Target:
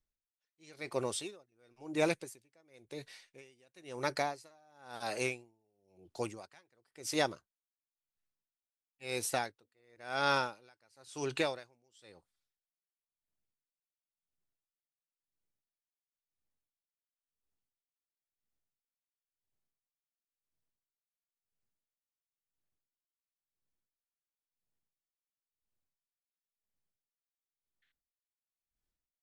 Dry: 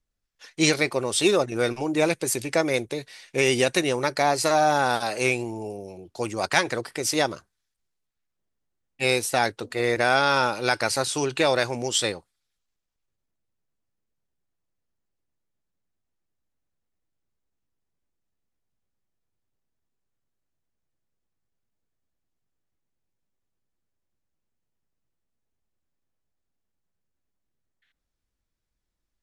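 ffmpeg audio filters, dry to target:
ffmpeg -i in.wav -af "aeval=exprs='val(0)*pow(10,-38*(0.5-0.5*cos(2*PI*0.97*n/s))/20)':channel_layout=same,volume=-7.5dB" out.wav

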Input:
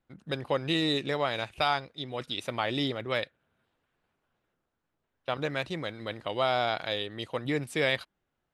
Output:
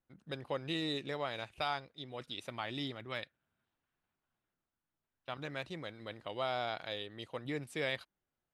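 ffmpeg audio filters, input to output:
ffmpeg -i in.wav -filter_complex "[0:a]asettb=1/sr,asplit=3[link_01][link_02][link_03];[link_01]atrim=end=2.494[link_04];[link_02]atrim=start=2.49:end=5.48,asetpts=PTS-STARTPTS,afade=type=in:duration=0.004:curve=qsin,afade=type=out:start_time=2.986:duration=0.004:curve=qsin,equalizer=frequency=490:width_type=o:width=0.63:gain=-6.5[link_05];[link_03]atrim=start=5.476[link_06];[link_04][link_05]acrossfade=duration=0.004:curve1=hsin:curve2=qsin[link_07];[link_07][link_06]acrossfade=duration=0.004:curve1=qsin:curve2=hsin,volume=-9dB" out.wav

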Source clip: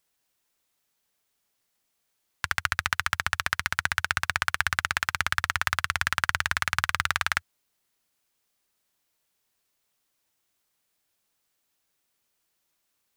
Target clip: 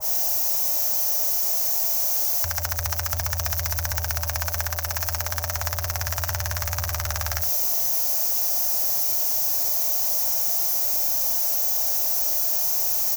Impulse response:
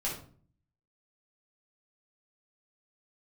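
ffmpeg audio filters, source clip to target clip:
-filter_complex "[0:a]aeval=exprs='val(0)+0.5*0.0668*sgn(val(0))':channel_layout=same,firequalizer=gain_entry='entry(120,0);entry(190,-18);entry(360,-18);entry(610,8);entry(1300,-10);entry(3500,-15);entry(5800,5);entry(9000,-10);entry(13000,6)':delay=0.05:min_phase=1,asplit=2[link_01][link_02];[link_02]aecho=0:1:38|66:0.141|0.316[link_03];[link_01][link_03]amix=inputs=2:normalize=0,adynamicequalizer=threshold=0.00501:dfrequency=1900:dqfactor=0.7:tfrequency=1900:tqfactor=0.7:attack=5:release=100:ratio=0.375:range=2.5:mode=boostabove:tftype=highshelf,volume=-1.5dB"

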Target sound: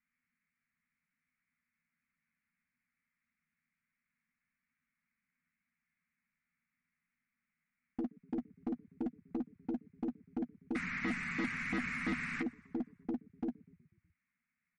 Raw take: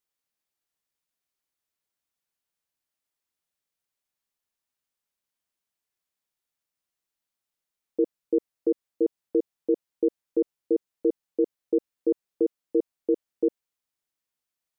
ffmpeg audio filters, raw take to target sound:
ffmpeg -i in.wav -filter_complex "[0:a]asettb=1/sr,asplit=3[link_01][link_02][link_03];[link_01]atrim=end=10.754[link_04];[link_02]atrim=start=10.75:end=12.42,asetpts=PTS-STARTPTS,afade=type=in:duration=0.004:curve=qsin,afade=type=out:start_time=1.666:duration=0.004:curve=qsin,aeval=exprs='val(0)+0.5*0.0282*sgn(val(0))':channel_layout=same[link_05];[link_03]atrim=start=12.416[link_06];[link_04][link_05]acrossfade=duration=0.004:curve1=hsin:curve2=qsin[link_07];[link_07][link_06]acrossfade=duration=0.004:curve1=qsin:curve2=hsin,firequalizer=gain_entry='entry(110,0);entry(160,9);entry(240,13);entry(350,-26);entry(490,-27);entry(790,-16);entry(1200,1);entry(2200,11);entry(3200,-20)':delay=0.05:min_phase=1,asplit=2[link_08][link_09];[link_09]asplit=5[link_10][link_11][link_12][link_13][link_14];[link_10]adelay=123,afreqshift=-31,volume=-23.5dB[link_15];[link_11]adelay=246,afreqshift=-62,volume=-27.5dB[link_16];[link_12]adelay=369,afreqshift=-93,volume=-31.5dB[link_17];[link_13]adelay=492,afreqshift=-124,volume=-35.5dB[link_18];[link_14]adelay=615,afreqshift=-155,volume=-39.6dB[link_19];[link_15][link_16][link_17][link_18][link_19]amix=inputs=5:normalize=0[link_20];[link_08][link_20]amix=inputs=2:normalize=0,aeval=exprs='0.075*(cos(1*acos(clip(val(0)/0.075,-1,1)))-cos(1*PI/2))+0.000944*(cos(2*acos(clip(val(0)/0.075,-1,1)))-cos(2*PI/2))+0.00075*(cos(5*acos(clip(val(0)/0.075,-1,1)))-cos(5*PI/2))+0.000668*(cos(7*acos(clip(val(0)/0.075,-1,1)))-cos(7*PI/2))+0.00133*(cos(8*acos(clip(val(0)/0.075,-1,1)))-cos(8*PI/2))':channel_layout=same,asoftclip=type=hard:threshold=-33dB,asplit=2[link_21][link_22];[link_22]adelay=12,volume=-11dB[link_23];[link_21][link_23]amix=inputs=2:normalize=0,volume=3dB" -ar 48000 -c:a libmp3lame -b:a 40k out.mp3

